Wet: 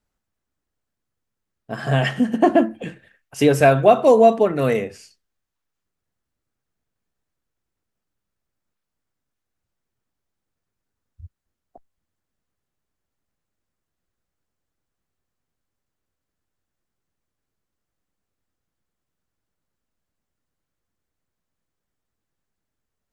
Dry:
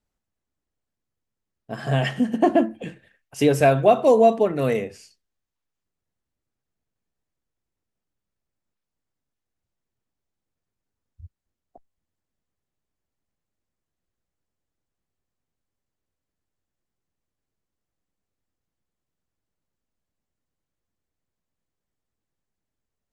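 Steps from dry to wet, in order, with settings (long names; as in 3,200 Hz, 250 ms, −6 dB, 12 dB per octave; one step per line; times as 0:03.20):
parametric band 1,400 Hz +3.5 dB 0.77 octaves
level +2.5 dB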